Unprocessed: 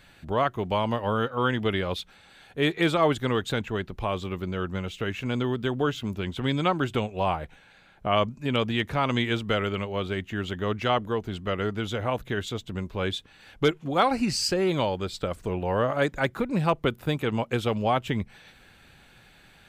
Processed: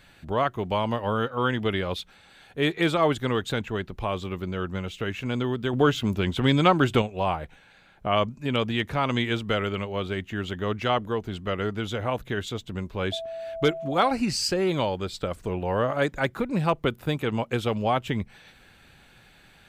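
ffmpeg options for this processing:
-filter_complex "[0:a]asettb=1/sr,asplit=3[s0][s1][s2];[s0]atrim=end=5.734[s3];[s1]atrim=start=5.73:end=7.02,asetpts=PTS-STARTPTS,afade=t=in:d=0.004:c=qsin,afade=t=out:st=1.286:d=0.004:c=qsin,acontrast=39[s4];[s2]atrim=start=7.016[s5];[s3][s4]acrossfade=d=0.004:c1=hsin:c2=qsin[s6];[s6][s5]acrossfade=d=0.004:c1=qsin:c2=hsin,asettb=1/sr,asplit=3[s7][s8][s9];[s7]atrim=end=13.124[s10];[s8]atrim=start=13.12:end=14.11,asetpts=PTS-STARTPTS,afade=t=in:d=0.004:c=qsin,afade=t=out:st=0.986:d=0.004:c=qsin,aeval=exprs='val(0)+0.0251*sin(2*PI*660*n/s)':c=same[s11];[s9]atrim=start=14.106[s12];[s10][s11]acrossfade=d=0.004:c1=hsin:c2=qsin[s13];[s13][s12]acrossfade=d=0.004:c1=qsin:c2=hsin"

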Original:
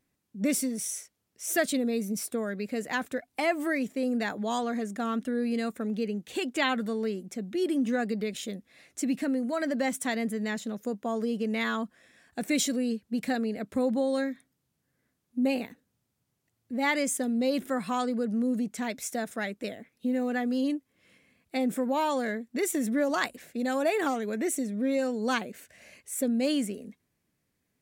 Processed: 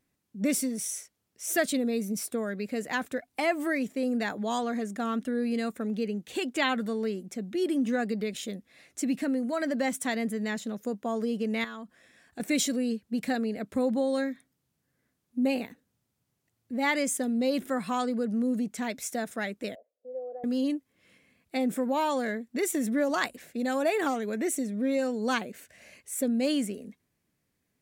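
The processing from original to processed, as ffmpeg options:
-filter_complex "[0:a]asettb=1/sr,asplit=3[s0][s1][s2];[s0]atrim=end=11.644[s3];[s1]atrim=start=11.64:end=12.4,asetpts=PTS-STARTPTS,afade=t=in:d=0.004:c=qsin,afade=t=out:st=0.756:d=0.004:c=qsin,acompressor=threshold=0.0112:ratio=4:attack=3.2:release=140:knee=1:detection=peak[s4];[s2]atrim=start=12.396[s5];[s3][s4]acrossfade=d=0.004:c1=hsin:c2=qsin[s6];[s6][s5]acrossfade=d=0.004:c1=qsin:c2=hsin,asettb=1/sr,asplit=3[s7][s8][s9];[s7]atrim=end=19.754[s10];[s8]atrim=start=19.75:end=20.44,asetpts=PTS-STARTPTS,afade=t=in:d=0.004:c=qsin,afade=t=out:st=0.686:d=0.004:c=qsin,asuperpass=centerf=580:order=4:qfactor=3.4[s11];[s9]atrim=start=20.436[s12];[s10][s11]acrossfade=d=0.004:c1=hsin:c2=qsin[s13];[s13][s12]acrossfade=d=0.004:c1=qsin:c2=hsin"

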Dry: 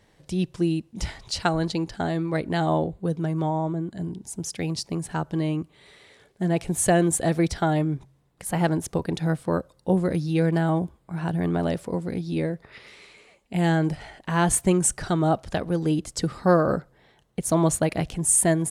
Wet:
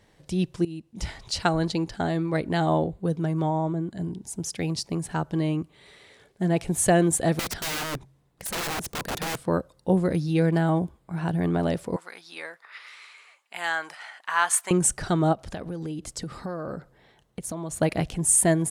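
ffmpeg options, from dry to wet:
-filter_complex "[0:a]asettb=1/sr,asplit=3[s0][s1][s2];[s0]atrim=end=7.394[s3];[s1]atrim=start=7.39:end=9.37,asetpts=PTS-STARTPTS,afade=t=in:d=0.004:c=qsin,afade=t=out:st=1.976:d=0.004:c=qsin,aeval=exprs='(mod(17.8*val(0)+1,2)-1)/17.8':c=same[s4];[s2]atrim=start=9.366[s5];[s3][s4]acrossfade=d=0.004:c1=hsin:c2=qsin[s6];[s6][s5]acrossfade=d=0.004:c1=qsin:c2=hsin,asettb=1/sr,asplit=3[s7][s8][s9];[s7]atrim=end=11.964[s10];[s8]atrim=start=11.96:end=14.71,asetpts=PTS-STARTPTS,afade=t=in:d=0.004:c=qsin,afade=t=out:st=2.746:d=0.004:c=qsin,highpass=f=1200:t=q:w=2[s11];[s9]atrim=start=14.706[s12];[s10][s11]acrossfade=d=0.004:c1=hsin:c2=qsin[s13];[s13][s12]acrossfade=d=0.004:c1=qsin:c2=hsin,asplit=3[s14][s15][s16];[s14]afade=t=out:st=15.32:d=0.02[s17];[s15]acompressor=threshold=0.0316:ratio=6:attack=3.2:release=140:knee=1:detection=peak,afade=t=in:st=15.32:d=0.02,afade=t=out:st=17.76:d=0.02[s18];[s16]afade=t=in:st=17.76:d=0.02[s19];[s17][s18][s19]amix=inputs=3:normalize=0,asplit=2[s20][s21];[s20]atrim=end=0.65,asetpts=PTS-STARTPTS,afade=t=out:st=0.646:d=0.004:c=hsin:silence=0.133352[s22];[s21]atrim=start=0.65,asetpts=PTS-STARTPTS,afade=t=in:d=0.53:silence=0.133352[s23];[s22][s23]concat=n=2:v=0:a=1"

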